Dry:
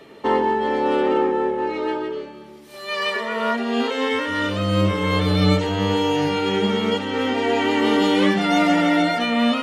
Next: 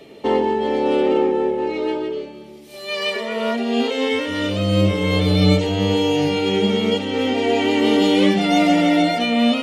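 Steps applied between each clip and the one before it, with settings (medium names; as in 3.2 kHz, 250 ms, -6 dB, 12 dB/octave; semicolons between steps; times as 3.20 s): high-order bell 1.3 kHz -8.5 dB 1.2 oct; trim +2.5 dB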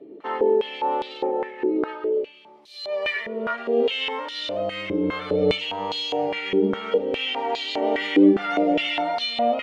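step-sequenced band-pass 4.9 Hz 330–4000 Hz; trim +6 dB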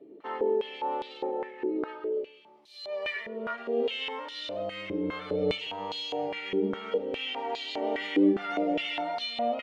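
echo from a far wall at 27 m, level -27 dB; trim -7.5 dB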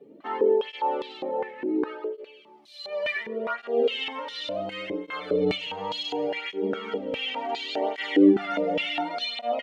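cancelling through-zero flanger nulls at 0.69 Hz, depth 3.2 ms; trim +6.5 dB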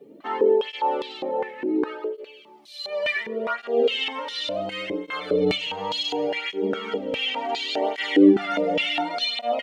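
treble shelf 4.7 kHz +8 dB; trim +2.5 dB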